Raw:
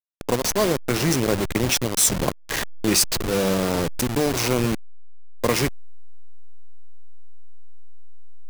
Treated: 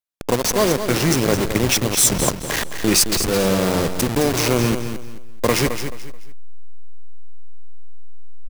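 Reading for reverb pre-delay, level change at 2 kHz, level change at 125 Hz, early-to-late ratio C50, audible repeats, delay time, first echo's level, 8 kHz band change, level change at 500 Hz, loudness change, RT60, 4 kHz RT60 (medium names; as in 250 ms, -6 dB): no reverb, +3.5 dB, +3.5 dB, no reverb, 3, 216 ms, -9.0 dB, +3.5 dB, +3.5 dB, +3.5 dB, no reverb, no reverb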